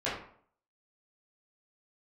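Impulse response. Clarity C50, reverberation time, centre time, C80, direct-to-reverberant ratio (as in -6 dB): 3.5 dB, 0.55 s, 44 ms, 7.5 dB, -11.0 dB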